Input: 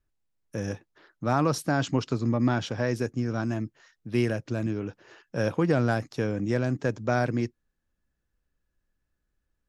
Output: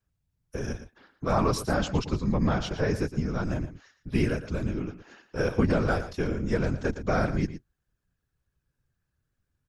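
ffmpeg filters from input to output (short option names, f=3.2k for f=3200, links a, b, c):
-af "afreqshift=-66,afftfilt=real='hypot(re,im)*cos(2*PI*random(0))':imag='hypot(re,im)*sin(2*PI*random(1))':win_size=512:overlap=0.75,aecho=1:1:115:0.237,volume=6dB"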